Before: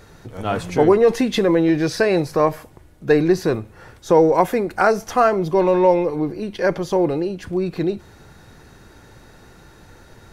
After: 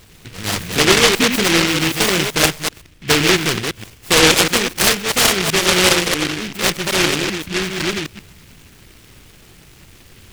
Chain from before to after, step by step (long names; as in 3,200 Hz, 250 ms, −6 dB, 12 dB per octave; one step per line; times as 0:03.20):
delay that plays each chunk backwards 128 ms, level −4 dB
short delay modulated by noise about 2,300 Hz, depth 0.41 ms